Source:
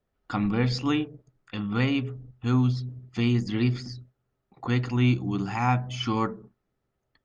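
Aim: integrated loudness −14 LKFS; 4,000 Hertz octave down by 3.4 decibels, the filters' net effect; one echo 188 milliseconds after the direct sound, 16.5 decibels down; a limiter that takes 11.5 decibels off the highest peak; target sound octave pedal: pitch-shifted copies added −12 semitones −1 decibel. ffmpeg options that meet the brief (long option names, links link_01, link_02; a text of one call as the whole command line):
ffmpeg -i in.wav -filter_complex "[0:a]equalizer=frequency=4000:width_type=o:gain=-5,alimiter=limit=-22.5dB:level=0:latency=1,aecho=1:1:188:0.15,asplit=2[link_01][link_02];[link_02]asetrate=22050,aresample=44100,atempo=2,volume=-1dB[link_03];[link_01][link_03]amix=inputs=2:normalize=0,volume=16dB" out.wav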